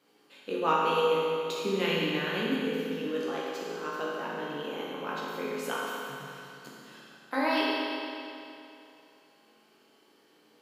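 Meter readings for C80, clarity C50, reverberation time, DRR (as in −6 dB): −1.0 dB, −2.5 dB, 2.7 s, −6.5 dB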